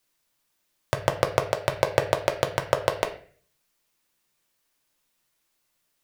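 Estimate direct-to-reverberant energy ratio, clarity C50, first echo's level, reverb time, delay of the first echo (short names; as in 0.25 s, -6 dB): 4.0 dB, 11.5 dB, none, 0.45 s, none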